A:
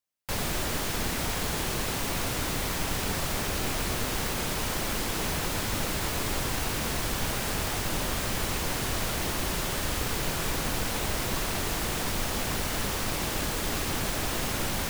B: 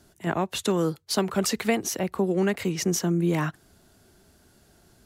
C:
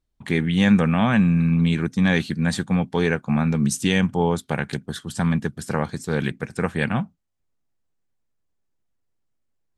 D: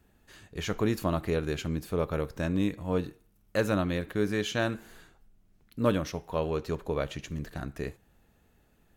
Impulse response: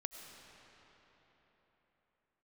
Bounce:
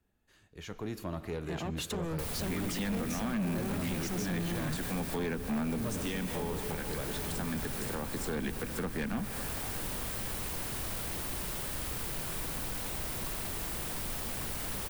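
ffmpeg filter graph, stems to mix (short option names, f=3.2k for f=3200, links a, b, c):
-filter_complex "[0:a]aexciter=amount=1.3:drive=8.5:freq=8.7k,adelay=1900,volume=-7dB[a];[1:a]dynaudnorm=f=380:g=3:m=11.5dB,asoftclip=type=tanh:threshold=-21.5dB,adelay=1250,volume=-8dB[b];[2:a]highpass=f=250:w=0.5412,highpass=f=250:w=1.3066,adelay=2200,volume=0.5dB,asplit=2[c][d];[d]volume=-6.5dB[e];[3:a]dynaudnorm=f=280:g=7:m=8dB,volume=-15.5dB,asplit=3[f][g][h];[g]volume=-4dB[i];[h]apad=whole_len=527977[j];[c][j]sidechaincompress=threshold=-50dB:ratio=8:attack=16:release=366[k];[4:a]atrim=start_sample=2205[l];[e][i]amix=inputs=2:normalize=0[m];[m][l]afir=irnorm=-1:irlink=0[n];[a][b][k][f][n]amix=inputs=5:normalize=0,acrossover=split=240[o][p];[p]acompressor=threshold=-33dB:ratio=6[q];[o][q]amix=inputs=2:normalize=0,asoftclip=type=tanh:threshold=-28dB"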